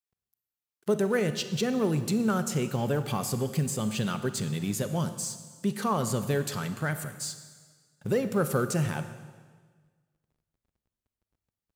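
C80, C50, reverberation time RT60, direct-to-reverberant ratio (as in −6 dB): 12.0 dB, 11.0 dB, 1.6 s, 10.0 dB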